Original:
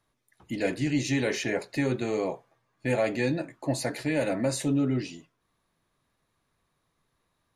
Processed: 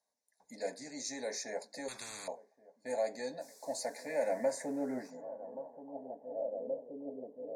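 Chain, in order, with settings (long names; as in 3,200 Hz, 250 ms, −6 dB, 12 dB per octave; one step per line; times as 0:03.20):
delay with a low-pass on its return 1,126 ms, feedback 64%, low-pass 890 Hz, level −20 dB
0:03.40–0:05.09: background noise white −51 dBFS
Butterworth band-reject 3,000 Hz, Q 0.52
high-shelf EQ 6,800 Hz −8.5 dB
band-pass filter sweep 3,500 Hz → 460 Hz, 0:03.63–0:06.92
parametric band 140 Hz −14 dB 0.48 octaves
phaser with its sweep stopped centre 340 Hz, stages 6
0:01.88–0:02.28: every bin compressed towards the loudest bin 10 to 1
level +17 dB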